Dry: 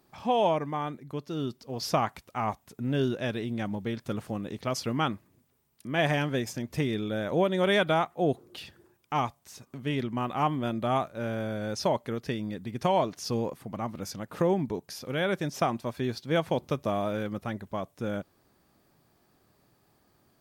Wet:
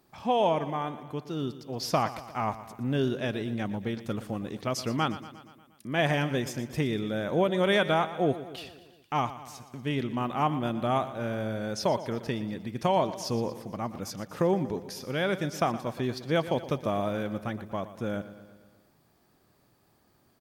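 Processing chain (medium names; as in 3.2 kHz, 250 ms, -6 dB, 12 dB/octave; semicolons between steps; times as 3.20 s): feedback delay 118 ms, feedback 60%, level -14.5 dB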